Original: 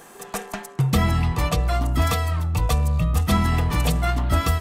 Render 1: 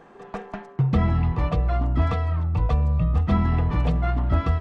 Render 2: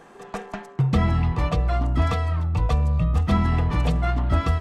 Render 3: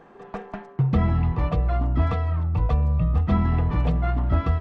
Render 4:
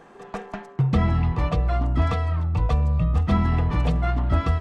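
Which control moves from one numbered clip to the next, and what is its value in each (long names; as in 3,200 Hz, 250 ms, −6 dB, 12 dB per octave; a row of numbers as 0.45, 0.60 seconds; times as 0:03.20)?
head-to-tape spacing loss, at 10 kHz: 37, 20, 45, 28 decibels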